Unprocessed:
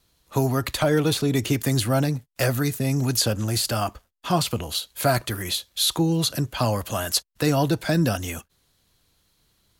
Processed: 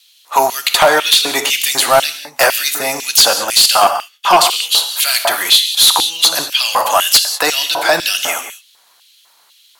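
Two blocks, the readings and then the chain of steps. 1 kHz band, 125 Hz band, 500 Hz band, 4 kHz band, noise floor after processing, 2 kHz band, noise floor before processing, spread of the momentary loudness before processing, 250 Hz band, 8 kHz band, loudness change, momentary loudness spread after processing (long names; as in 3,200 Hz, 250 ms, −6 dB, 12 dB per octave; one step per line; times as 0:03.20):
+15.5 dB, below −15 dB, +8.5 dB, +17.0 dB, −52 dBFS, +15.0 dB, −67 dBFS, 6 LU, −7.0 dB, +14.5 dB, +12.0 dB, 7 LU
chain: reverb whose tail is shaped and stops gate 220 ms flat, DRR 7.5 dB
auto-filter high-pass square 2 Hz 860–3,000 Hz
sine wavefolder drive 8 dB, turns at −5 dBFS
level +2.5 dB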